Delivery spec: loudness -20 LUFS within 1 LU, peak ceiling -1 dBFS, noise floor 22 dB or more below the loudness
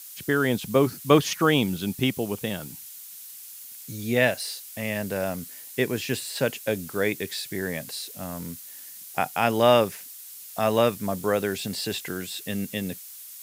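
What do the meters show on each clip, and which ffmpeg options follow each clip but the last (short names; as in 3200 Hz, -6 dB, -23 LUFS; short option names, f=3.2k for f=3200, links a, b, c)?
noise floor -43 dBFS; noise floor target -48 dBFS; loudness -26.0 LUFS; peak -3.5 dBFS; loudness target -20.0 LUFS
-> -af "afftdn=nr=6:nf=-43"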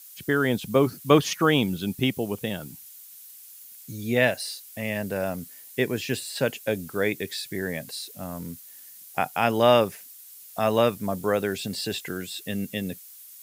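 noise floor -47 dBFS; noise floor target -48 dBFS
-> -af "afftdn=nr=6:nf=-47"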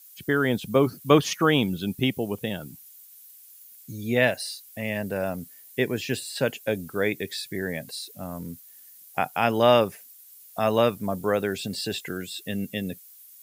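noise floor -50 dBFS; loudness -26.0 LUFS; peak -3.5 dBFS; loudness target -20.0 LUFS
-> -af "volume=6dB,alimiter=limit=-1dB:level=0:latency=1"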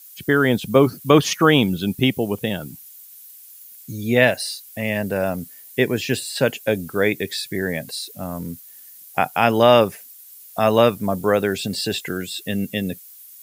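loudness -20.5 LUFS; peak -1.0 dBFS; noise floor -44 dBFS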